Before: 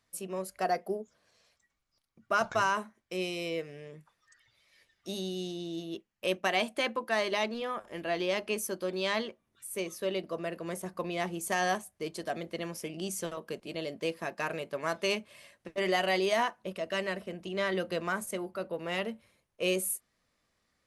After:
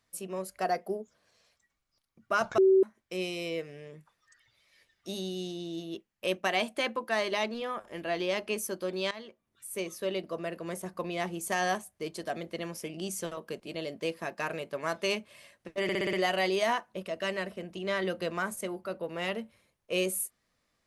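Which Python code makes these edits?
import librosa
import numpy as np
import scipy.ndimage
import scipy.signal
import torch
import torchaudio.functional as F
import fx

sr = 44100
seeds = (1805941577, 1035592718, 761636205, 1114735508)

y = fx.edit(x, sr, fx.bleep(start_s=2.58, length_s=0.25, hz=382.0, db=-17.5),
    fx.fade_in_from(start_s=9.11, length_s=0.59, floor_db=-17.0),
    fx.stutter(start_s=15.83, slice_s=0.06, count=6), tone=tone)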